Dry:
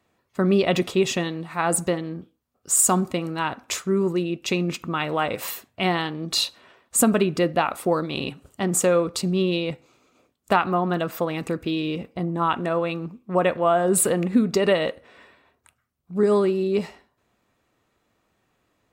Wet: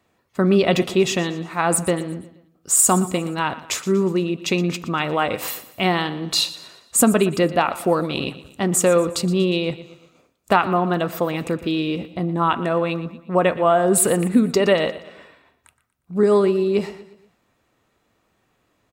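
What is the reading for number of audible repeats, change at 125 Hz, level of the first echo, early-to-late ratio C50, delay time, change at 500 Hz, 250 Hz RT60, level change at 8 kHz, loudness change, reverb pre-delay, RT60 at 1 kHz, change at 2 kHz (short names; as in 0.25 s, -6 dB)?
3, +3.0 dB, -16.0 dB, none, 0.119 s, +3.0 dB, none, +3.0 dB, +3.0 dB, none, none, +3.0 dB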